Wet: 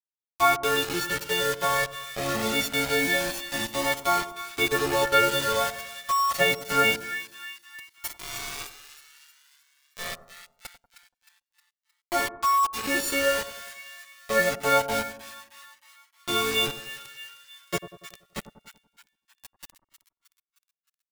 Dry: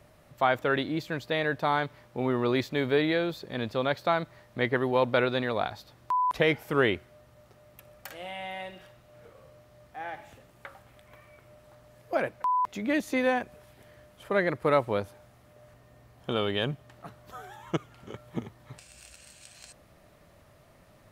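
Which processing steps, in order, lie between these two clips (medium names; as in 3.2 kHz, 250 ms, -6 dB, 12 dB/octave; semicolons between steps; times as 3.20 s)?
partials quantised in pitch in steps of 4 st; Bessel high-pass 160 Hz, order 4; bit crusher 5-bit; two-band feedback delay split 1.2 kHz, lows 95 ms, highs 311 ms, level -12 dB; Shepard-style flanger rising 0.25 Hz; trim +5 dB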